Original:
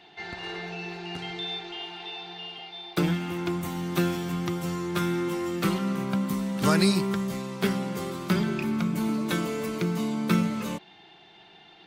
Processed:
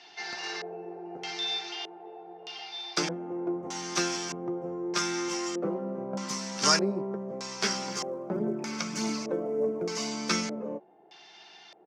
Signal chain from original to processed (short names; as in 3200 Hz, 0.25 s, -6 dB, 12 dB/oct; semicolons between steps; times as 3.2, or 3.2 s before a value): doubler 14 ms -10.5 dB; LFO low-pass square 0.81 Hz 530–4800 Hz; weighting filter A; 7.88–10.08 phaser 1.7 Hz, delay 2.2 ms, feedback 36%; resonant high shelf 4800 Hz +7.5 dB, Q 3